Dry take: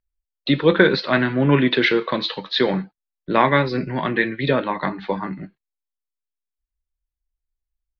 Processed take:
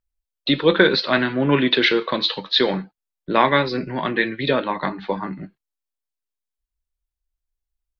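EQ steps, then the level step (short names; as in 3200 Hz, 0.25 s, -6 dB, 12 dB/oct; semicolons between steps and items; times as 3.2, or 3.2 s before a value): dynamic EQ 110 Hz, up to -6 dB, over -32 dBFS, Q 0.9; dynamic EQ 4100 Hz, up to +5 dB, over -33 dBFS, Q 0.78; bell 2000 Hz -2.5 dB 0.62 oct; 0.0 dB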